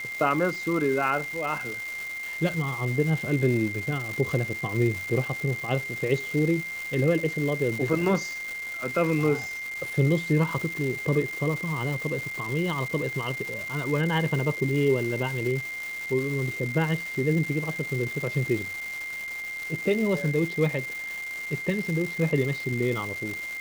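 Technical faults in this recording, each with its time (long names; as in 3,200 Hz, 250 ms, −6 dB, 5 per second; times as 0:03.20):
surface crackle 590 per second −31 dBFS
whistle 2,100 Hz −32 dBFS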